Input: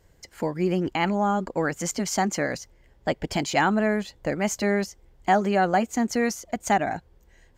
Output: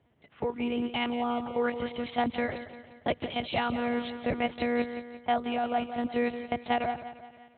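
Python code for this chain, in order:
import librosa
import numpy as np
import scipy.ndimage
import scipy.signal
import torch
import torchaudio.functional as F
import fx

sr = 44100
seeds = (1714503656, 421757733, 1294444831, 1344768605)

p1 = fx.peak_eq(x, sr, hz=1700.0, db=-10.5, octaves=0.4)
p2 = fx.lpc_monotone(p1, sr, seeds[0], pitch_hz=240.0, order=8)
p3 = scipy.signal.sosfilt(scipy.signal.butter(4, 74.0, 'highpass', fs=sr, output='sos'), p2)
p4 = fx.high_shelf(p3, sr, hz=2400.0, db=11.5)
p5 = fx.level_steps(p4, sr, step_db=15)
p6 = p4 + (p5 * librosa.db_to_amplitude(2.0))
p7 = fx.env_lowpass(p6, sr, base_hz=2200.0, full_db=-18.0)
p8 = fx.echo_feedback(p7, sr, ms=175, feedback_pct=47, wet_db=-12.5)
p9 = fx.rider(p8, sr, range_db=10, speed_s=0.5)
y = p9 * librosa.db_to_amplitude(-8.0)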